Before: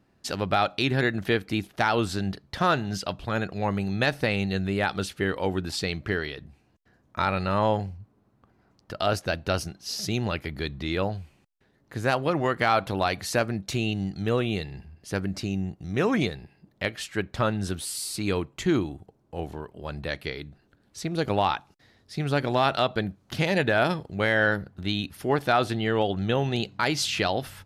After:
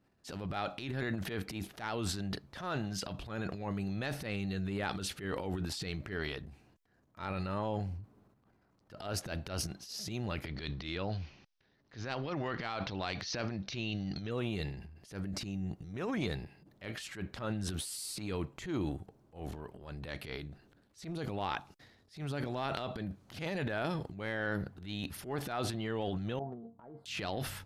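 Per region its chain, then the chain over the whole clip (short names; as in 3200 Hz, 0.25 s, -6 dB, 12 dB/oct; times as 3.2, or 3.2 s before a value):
10.46–14.31 steep low-pass 6000 Hz 72 dB/oct + high shelf 2300 Hz +9 dB
26.39–27.06 inverse Chebyshev low-pass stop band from 2400 Hz, stop band 50 dB + tilt +2 dB/oct + resonator 230 Hz, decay 0.26 s, mix 80%
whole clip: limiter -16.5 dBFS; transient shaper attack -11 dB, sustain +10 dB; gain -8.5 dB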